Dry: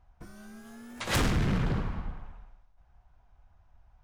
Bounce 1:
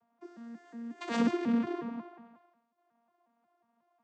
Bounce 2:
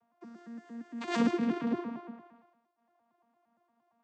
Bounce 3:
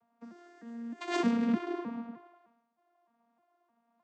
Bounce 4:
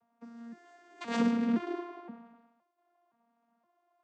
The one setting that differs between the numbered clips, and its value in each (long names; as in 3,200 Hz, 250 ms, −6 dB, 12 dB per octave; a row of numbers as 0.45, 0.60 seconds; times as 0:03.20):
vocoder with an arpeggio as carrier, a note every: 181, 115, 307, 519 milliseconds